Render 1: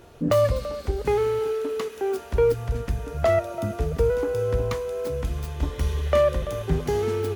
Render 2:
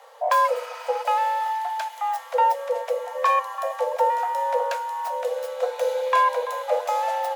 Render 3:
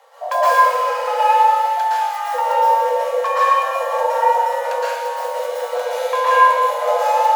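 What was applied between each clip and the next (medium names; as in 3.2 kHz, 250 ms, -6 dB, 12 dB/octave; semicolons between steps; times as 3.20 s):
spectral replace 0.50–1.01 s, 470–6000 Hz after; frequency shift +440 Hz
plate-style reverb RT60 1.6 s, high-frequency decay 0.9×, pre-delay 105 ms, DRR -9.5 dB; trim -2.5 dB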